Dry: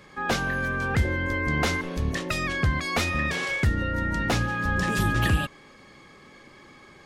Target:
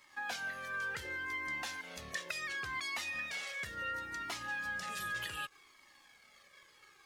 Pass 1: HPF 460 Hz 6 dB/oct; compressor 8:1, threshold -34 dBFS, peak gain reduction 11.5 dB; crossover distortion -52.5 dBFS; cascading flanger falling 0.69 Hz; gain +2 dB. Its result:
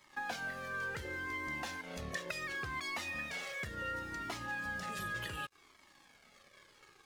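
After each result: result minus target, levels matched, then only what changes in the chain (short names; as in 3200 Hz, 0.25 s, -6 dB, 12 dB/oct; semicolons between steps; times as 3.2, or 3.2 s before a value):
500 Hz band +5.5 dB; crossover distortion: distortion +8 dB
change: HPF 1800 Hz 6 dB/oct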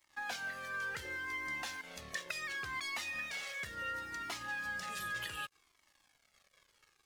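crossover distortion: distortion +8 dB
change: crossover distortion -61 dBFS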